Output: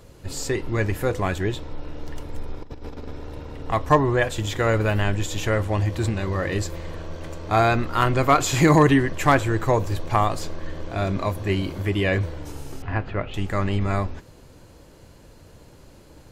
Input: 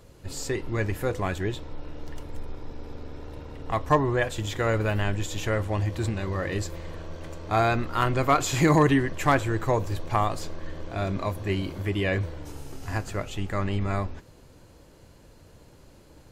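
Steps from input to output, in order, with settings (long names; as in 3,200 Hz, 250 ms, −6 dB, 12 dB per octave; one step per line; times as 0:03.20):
0:02.62–0:03.11: compressor whose output falls as the input rises −37 dBFS, ratio −0.5
0:12.82–0:13.34: low-pass filter 3,100 Hz 24 dB per octave
level +4 dB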